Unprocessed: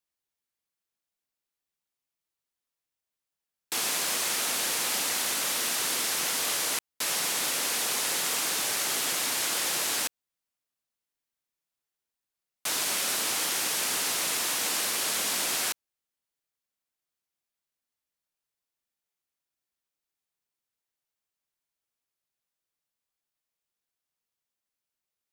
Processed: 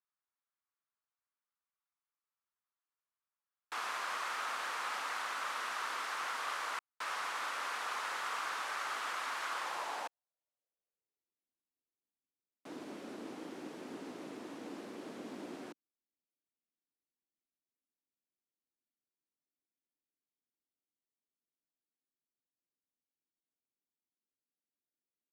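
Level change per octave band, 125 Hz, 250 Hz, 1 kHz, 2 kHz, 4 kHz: -11.5 dB, -4.5 dB, -2.0 dB, -7.5 dB, -17.0 dB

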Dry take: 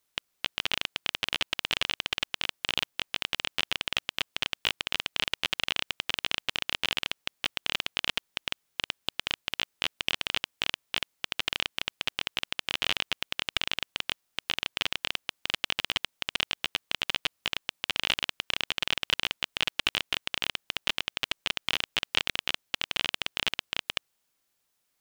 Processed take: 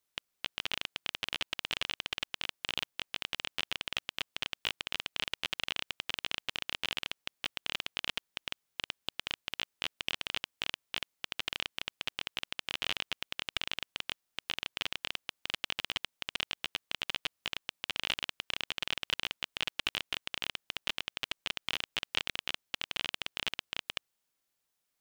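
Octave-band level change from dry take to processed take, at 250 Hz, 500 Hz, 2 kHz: -6.0 dB, -6.0 dB, -6.0 dB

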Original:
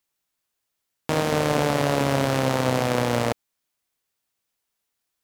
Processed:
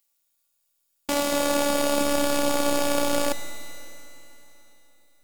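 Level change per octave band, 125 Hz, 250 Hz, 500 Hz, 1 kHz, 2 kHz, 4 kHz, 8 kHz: -17.5 dB, -1.0 dB, -1.0 dB, -2.0 dB, -2.0 dB, +2.0 dB, +6.5 dB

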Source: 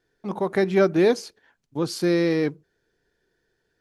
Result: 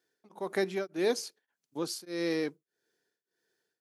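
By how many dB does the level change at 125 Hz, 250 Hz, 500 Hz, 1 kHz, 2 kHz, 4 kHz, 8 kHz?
-17.0 dB, -12.5 dB, -10.5 dB, -10.5 dB, -8.5 dB, -5.0 dB, -2.0 dB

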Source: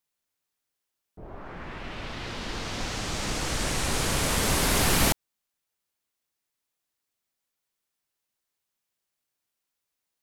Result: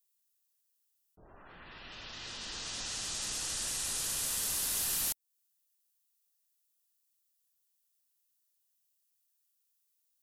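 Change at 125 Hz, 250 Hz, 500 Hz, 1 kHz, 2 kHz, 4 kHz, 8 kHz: -21.5 dB, -21.5 dB, -20.0 dB, -17.0 dB, -13.5 dB, -7.0 dB, -3.0 dB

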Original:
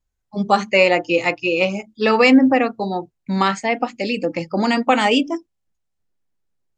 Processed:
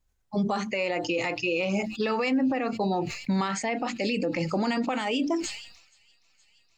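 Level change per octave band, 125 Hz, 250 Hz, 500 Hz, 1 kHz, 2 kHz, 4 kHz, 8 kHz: -4.0 dB, -8.5 dB, -10.0 dB, -11.0 dB, -11.0 dB, -9.5 dB, -1.0 dB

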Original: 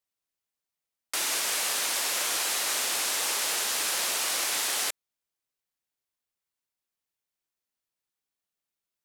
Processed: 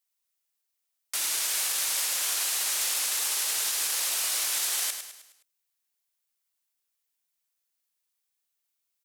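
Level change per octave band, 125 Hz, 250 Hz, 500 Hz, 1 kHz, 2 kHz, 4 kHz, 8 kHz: no reading, under -10 dB, -8.5 dB, -6.0 dB, -3.5 dB, -1.0 dB, +1.5 dB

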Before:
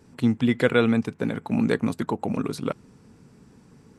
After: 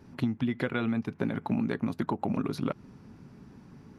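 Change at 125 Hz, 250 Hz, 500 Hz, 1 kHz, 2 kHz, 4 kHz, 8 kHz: -5.0 dB, -6.0 dB, -10.0 dB, -4.0 dB, -8.5 dB, -9.5 dB, under -10 dB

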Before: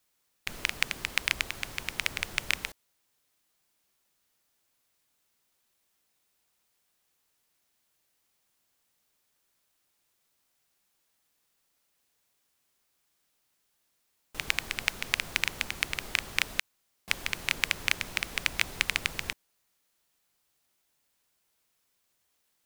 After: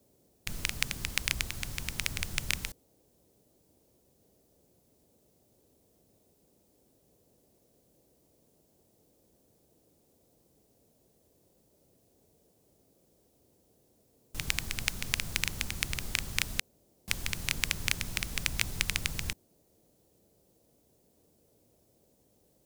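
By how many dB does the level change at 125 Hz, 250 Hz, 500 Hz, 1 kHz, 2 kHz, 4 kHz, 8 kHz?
+7.5 dB, +2.5 dB, -3.5 dB, -5.5 dB, -4.5 dB, -2.0 dB, +2.5 dB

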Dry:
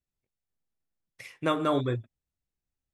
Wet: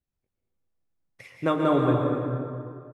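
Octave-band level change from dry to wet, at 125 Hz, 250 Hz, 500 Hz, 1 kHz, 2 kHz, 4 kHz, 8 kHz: +6.5 dB, +7.0 dB, +5.5 dB, +4.0 dB, +1.5 dB, -2.5 dB, no reading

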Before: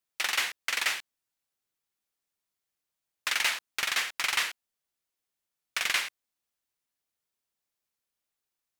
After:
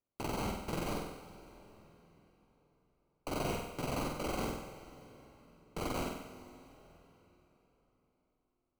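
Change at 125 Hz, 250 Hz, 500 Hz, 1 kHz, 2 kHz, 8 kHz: no reading, +19.0 dB, +10.5 dB, -2.5 dB, -18.0 dB, -13.5 dB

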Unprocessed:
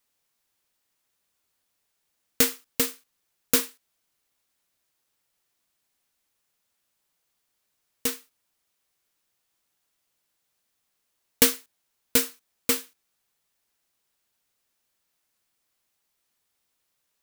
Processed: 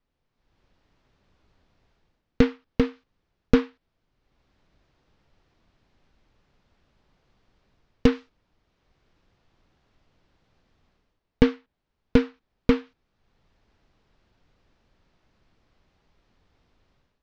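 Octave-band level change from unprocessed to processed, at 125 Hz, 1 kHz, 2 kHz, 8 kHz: +15.0 dB, +2.5 dB, -1.5 dB, under -25 dB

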